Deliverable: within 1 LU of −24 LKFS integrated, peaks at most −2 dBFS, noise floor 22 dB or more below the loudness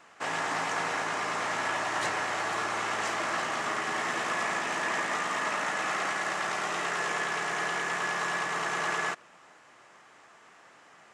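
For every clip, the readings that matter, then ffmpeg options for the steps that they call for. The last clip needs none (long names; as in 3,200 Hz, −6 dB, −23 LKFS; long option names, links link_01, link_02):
integrated loudness −30.0 LKFS; sample peak −16.0 dBFS; target loudness −24.0 LKFS
→ -af "volume=6dB"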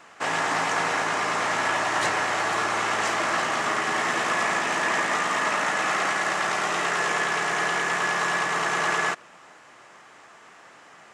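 integrated loudness −24.0 LKFS; sample peak −10.0 dBFS; background noise floor −50 dBFS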